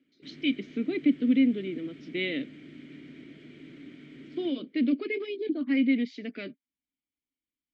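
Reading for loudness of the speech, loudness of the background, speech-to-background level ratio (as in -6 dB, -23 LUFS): -29.0 LUFS, -48.0 LUFS, 19.0 dB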